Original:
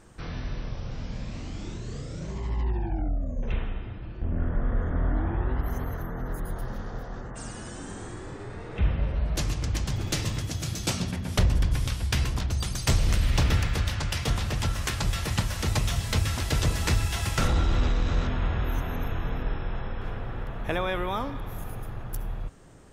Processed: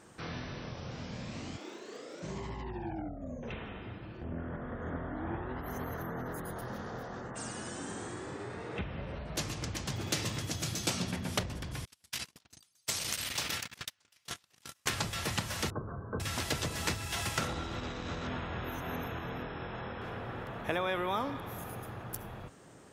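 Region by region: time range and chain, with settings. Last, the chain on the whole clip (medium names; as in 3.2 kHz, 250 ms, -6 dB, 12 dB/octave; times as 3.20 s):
1.56–2.22 s: high-pass 310 Hz 24 dB/octave + treble shelf 4.6 kHz -9 dB + crackle 160 per s -54 dBFS
11.85–14.86 s: gate -23 dBFS, range -42 dB + tilt EQ +3.5 dB/octave + compression 2.5:1, threshold -32 dBFS
15.70–16.20 s: rippled Chebyshev low-pass 1.6 kHz, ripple 9 dB + tilt shelf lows +3 dB, about 700 Hz
whole clip: compression, threshold -26 dBFS; high-pass 77 Hz; bass shelf 110 Hz -11 dB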